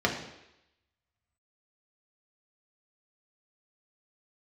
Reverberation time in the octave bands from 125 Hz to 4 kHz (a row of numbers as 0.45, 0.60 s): 0.70, 0.80, 0.85, 0.85, 0.90, 0.95 s